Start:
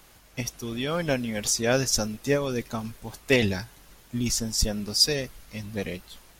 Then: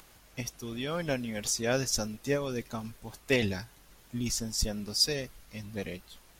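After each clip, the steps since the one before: upward compressor, threshold -46 dBFS; trim -5.5 dB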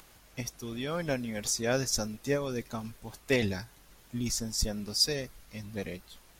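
dynamic bell 2.9 kHz, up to -6 dB, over -57 dBFS, Q 5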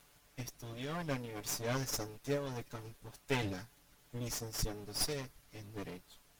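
comb filter that takes the minimum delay 6.9 ms; trim -6 dB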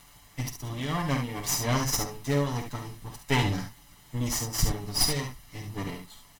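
comb 1 ms, depth 51%; on a send: early reflections 49 ms -9 dB, 70 ms -7.5 dB; on the sum: trim +8.5 dB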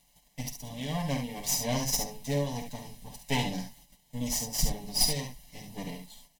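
gate -52 dBFS, range -10 dB; static phaser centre 350 Hz, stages 6

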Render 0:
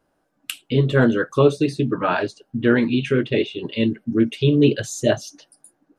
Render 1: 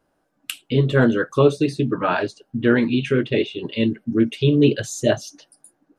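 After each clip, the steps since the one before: no audible change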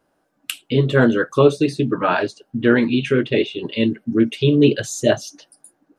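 bass shelf 85 Hz -8.5 dB; trim +2.5 dB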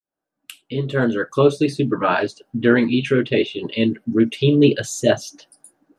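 fade-in on the opening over 1.71 s

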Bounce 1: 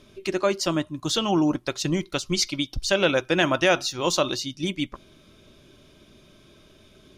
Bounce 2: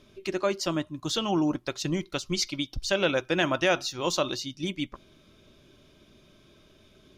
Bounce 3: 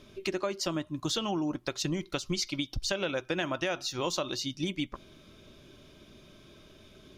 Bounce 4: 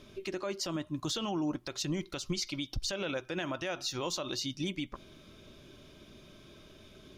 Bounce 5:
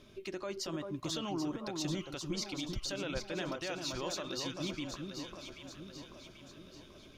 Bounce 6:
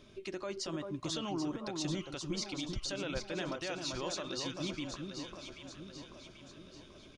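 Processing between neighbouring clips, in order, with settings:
peaking EQ 9.3 kHz -4 dB 0.56 oct; trim -4 dB
compression 6:1, threshold -31 dBFS, peak gain reduction 12 dB; trim +3 dB
peak limiter -24.5 dBFS, peak gain reduction 10 dB
echo whose repeats swap between lows and highs 393 ms, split 1.3 kHz, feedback 70%, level -4 dB; trim -4 dB
resampled via 22.05 kHz

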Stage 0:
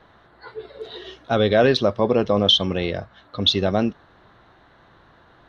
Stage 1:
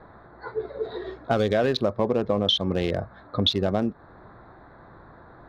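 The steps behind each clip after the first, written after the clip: local Wiener filter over 15 samples; compression 4:1, threshold -27 dBFS, peak gain reduction 13 dB; trim +6 dB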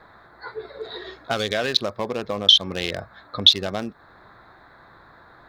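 tilt shelf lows -9.5 dB, about 1.4 kHz; trim +3 dB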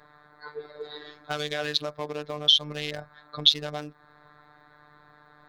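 robot voice 149 Hz; trim -3.5 dB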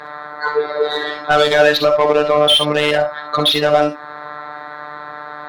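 overdrive pedal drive 31 dB, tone 1.8 kHz, clips at -1 dBFS; reverberation, pre-delay 25 ms, DRR 6 dB; trim +1.5 dB

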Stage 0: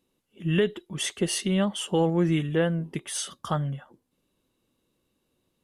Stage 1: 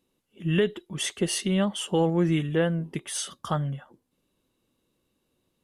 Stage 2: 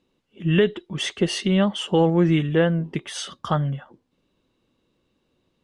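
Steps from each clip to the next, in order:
no audible change
low-pass 4.9 kHz 12 dB/octave; trim +5 dB

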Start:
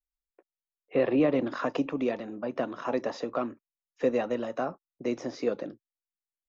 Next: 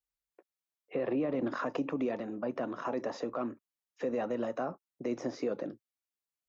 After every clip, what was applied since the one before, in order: high-pass 48 Hz; dynamic bell 3.7 kHz, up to -6 dB, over -53 dBFS, Q 0.87; peak limiter -24 dBFS, peak gain reduction 10 dB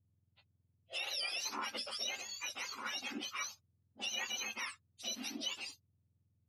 spectrum inverted on a logarithmic axis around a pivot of 1.2 kHz; bass shelf 120 Hz +11.5 dB; trim -1 dB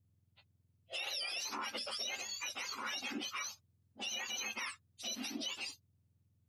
peak limiter -33.5 dBFS, peak gain reduction 7 dB; trim +2.5 dB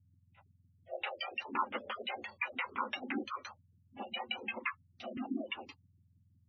reverse echo 35 ms -12 dB; LFO low-pass saw down 5.8 Hz 200–2600 Hz; spectral gate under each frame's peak -20 dB strong; trim +4.5 dB

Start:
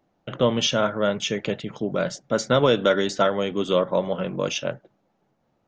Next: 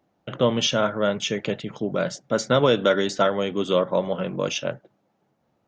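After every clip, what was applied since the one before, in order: high-pass 45 Hz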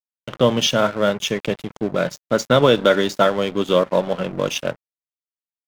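crossover distortion -37 dBFS; trim +5 dB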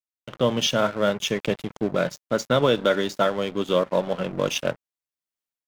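level rider gain up to 13 dB; trim -7 dB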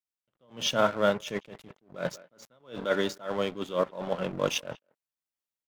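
speakerphone echo 190 ms, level -24 dB; dynamic bell 950 Hz, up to +4 dB, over -31 dBFS, Q 0.96; attacks held to a fixed rise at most 180 dB/s; trim -3.5 dB

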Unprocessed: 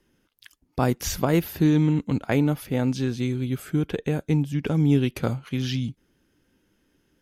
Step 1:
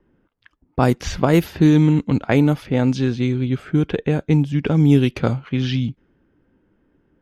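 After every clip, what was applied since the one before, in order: level-controlled noise filter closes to 1.3 kHz, open at -15.5 dBFS; trim +6 dB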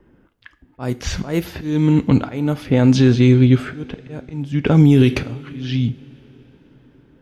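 slow attack 613 ms; two-slope reverb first 0.38 s, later 4.3 s, from -21 dB, DRR 11.5 dB; peak limiter -11.5 dBFS, peak gain reduction 7.5 dB; trim +8 dB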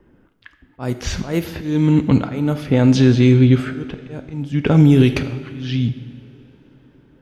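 algorithmic reverb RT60 1.5 s, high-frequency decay 0.8×, pre-delay 5 ms, DRR 12 dB

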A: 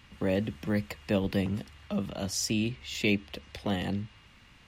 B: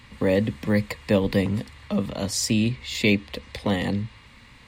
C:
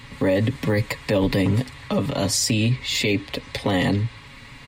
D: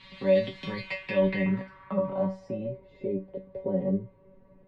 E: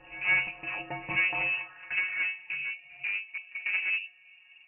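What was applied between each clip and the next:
rippled EQ curve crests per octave 0.98, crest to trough 6 dB; trim +6.5 dB
comb 7.2 ms, depth 59%; peak limiter -18 dBFS, peak gain reduction 11 dB; trim +6 dB
feedback comb 190 Hz, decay 0.26 s, harmonics all, mix 100%; low-pass sweep 3.8 kHz -> 490 Hz, 0.69–2.90 s; feedback comb 290 Hz, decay 0.15 s, harmonics all, mix 50%; trim +7.5 dB
one-sided clip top -33 dBFS; pre-echo 146 ms -20 dB; frequency inversion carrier 2.8 kHz

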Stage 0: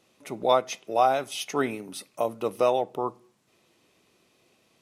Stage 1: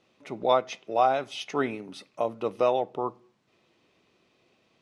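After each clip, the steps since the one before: low-pass 4.5 kHz 12 dB/octave; trim -1 dB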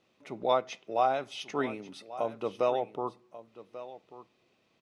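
delay 1139 ms -15.5 dB; trim -4 dB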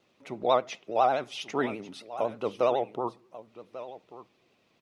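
vibrato 12 Hz 97 cents; trim +2.5 dB

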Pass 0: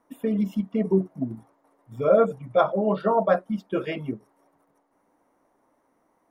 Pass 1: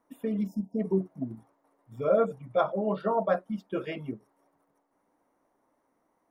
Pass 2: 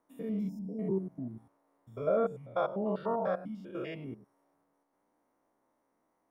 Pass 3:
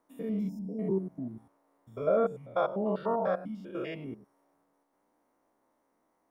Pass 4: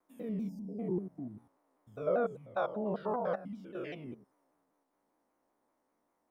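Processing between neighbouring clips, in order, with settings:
spectral selection erased 0.47–0.80 s, 960–4800 Hz; trim -5.5 dB
spectrogram pixelated in time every 100 ms; trim -2.5 dB
peaking EQ 120 Hz -3.5 dB 0.77 oct; trim +2.5 dB
vibrato with a chosen wave saw down 5.1 Hz, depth 160 cents; trim -4.5 dB

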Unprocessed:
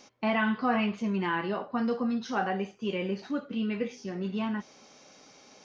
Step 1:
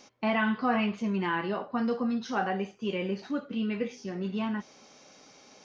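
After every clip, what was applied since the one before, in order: no audible change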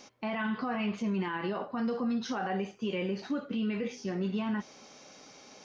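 peak limiter -26.5 dBFS, peak gain reduction 11 dB; trim +2 dB

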